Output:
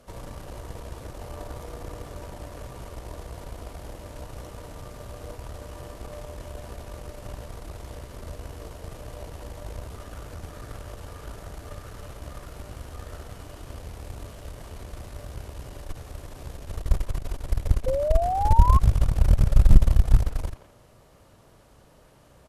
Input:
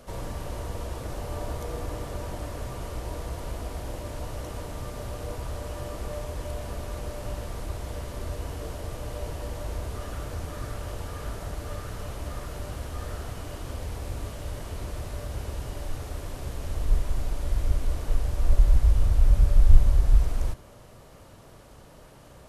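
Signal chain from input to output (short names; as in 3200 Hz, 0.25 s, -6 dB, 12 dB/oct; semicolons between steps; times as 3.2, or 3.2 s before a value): added harmonics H 2 -8 dB, 6 -14 dB, 7 -24 dB, 8 -31 dB, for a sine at -2.5 dBFS; speakerphone echo 0.17 s, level -12 dB; painted sound rise, 17.86–18.79, 510–1100 Hz -25 dBFS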